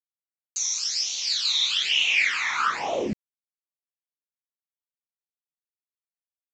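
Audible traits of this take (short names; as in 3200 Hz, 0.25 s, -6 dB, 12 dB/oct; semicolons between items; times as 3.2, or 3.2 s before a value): phasing stages 12, 1.1 Hz, lowest notch 490–1600 Hz; a quantiser's noise floor 8-bit, dither none; µ-law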